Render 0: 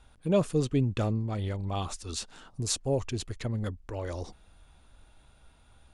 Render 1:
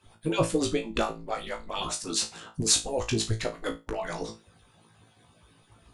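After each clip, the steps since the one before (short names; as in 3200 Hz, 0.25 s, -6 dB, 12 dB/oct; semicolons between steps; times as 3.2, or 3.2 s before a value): median-filter separation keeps percussive; flutter echo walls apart 3.1 m, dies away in 0.24 s; gain +7 dB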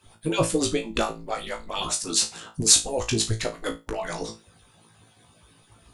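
high shelf 5100 Hz +7 dB; gain +2 dB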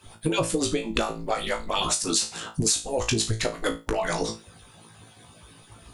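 compressor 8:1, threshold -27 dBFS, peak gain reduction 15.5 dB; gain +6 dB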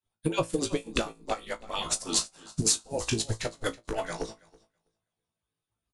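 on a send: feedback echo 0.326 s, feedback 40%, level -10 dB; on the sum: upward expander 2.5:1, over -46 dBFS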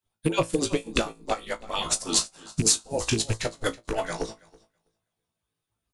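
rattling part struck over -31 dBFS, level -27 dBFS; gain +3.5 dB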